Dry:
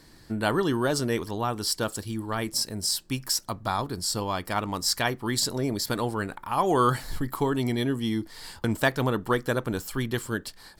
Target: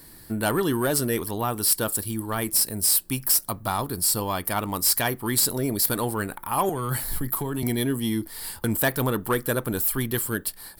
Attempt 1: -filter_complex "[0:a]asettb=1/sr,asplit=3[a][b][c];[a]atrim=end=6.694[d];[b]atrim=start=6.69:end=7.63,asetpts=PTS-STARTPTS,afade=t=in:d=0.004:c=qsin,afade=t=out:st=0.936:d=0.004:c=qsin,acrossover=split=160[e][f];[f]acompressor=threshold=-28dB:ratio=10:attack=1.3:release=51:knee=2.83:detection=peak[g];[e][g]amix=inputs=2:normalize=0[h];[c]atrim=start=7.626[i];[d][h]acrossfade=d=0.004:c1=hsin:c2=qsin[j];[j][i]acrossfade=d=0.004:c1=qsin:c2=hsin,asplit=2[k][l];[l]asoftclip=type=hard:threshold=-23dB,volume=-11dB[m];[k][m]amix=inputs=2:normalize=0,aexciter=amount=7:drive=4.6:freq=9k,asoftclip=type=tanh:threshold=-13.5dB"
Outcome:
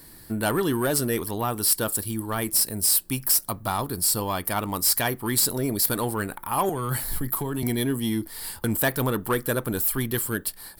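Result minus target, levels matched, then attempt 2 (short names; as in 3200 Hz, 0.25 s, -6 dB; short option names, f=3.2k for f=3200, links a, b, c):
hard clip: distortion +21 dB
-filter_complex "[0:a]asettb=1/sr,asplit=3[a][b][c];[a]atrim=end=6.694[d];[b]atrim=start=6.69:end=7.63,asetpts=PTS-STARTPTS,afade=t=in:d=0.004:c=qsin,afade=t=out:st=0.936:d=0.004:c=qsin,acrossover=split=160[e][f];[f]acompressor=threshold=-28dB:ratio=10:attack=1.3:release=51:knee=2.83:detection=peak[g];[e][g]amix=inputs=2:normalize=0[h];[c]atrim=start=7.626[i];[d][h]acrossfade=d=0.004:c1=hsin:c2=qsin[j];[j][i]acrossfade=d=0.004:c1=qsin:c2=hsin,asplit=2[k][l];[l]asoftclip=type=hard:threshold=-13dB,volume=-11dB[m];[k][m]amix=inputs=2:normalize=0,aexciter=amount=7:drive=4.6:freq=9k,asoftclip=type=tanh:threshold=-13.5dB"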